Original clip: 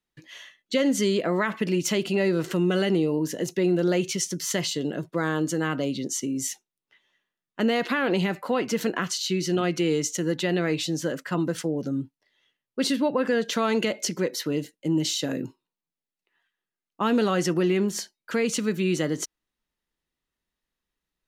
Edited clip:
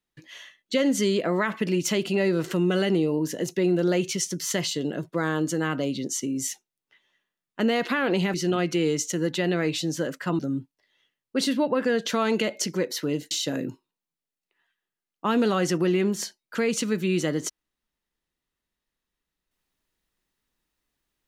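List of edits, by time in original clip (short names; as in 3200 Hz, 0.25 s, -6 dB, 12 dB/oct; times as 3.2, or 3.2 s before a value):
8.34–9.39 cut
11.44–11.82 cut
14.74–15.07 cut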